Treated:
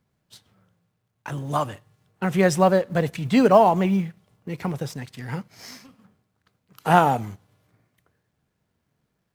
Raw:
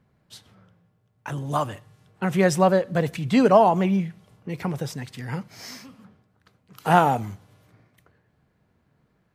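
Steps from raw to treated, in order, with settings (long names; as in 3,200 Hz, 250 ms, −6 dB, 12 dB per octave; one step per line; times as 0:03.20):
mu-law and A-law mismatch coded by A
level +1 dB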